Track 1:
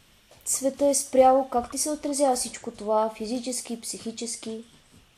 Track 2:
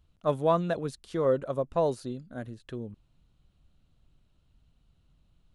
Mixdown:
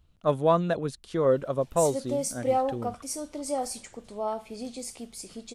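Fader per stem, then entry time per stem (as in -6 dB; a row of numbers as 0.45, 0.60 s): -7.5, +2.5 dB; 1.30, 0.00 s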